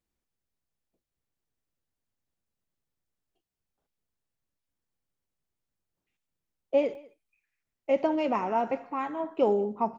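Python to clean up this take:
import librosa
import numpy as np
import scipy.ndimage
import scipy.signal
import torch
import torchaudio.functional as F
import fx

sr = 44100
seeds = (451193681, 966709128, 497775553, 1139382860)

y = fx.fix_interpolate(x, sr, at_s=(6.95,), length_ms=1.4)
y = fx.fix_echo_inverse(y, sr, delay_ms=199, level_db=-23.5)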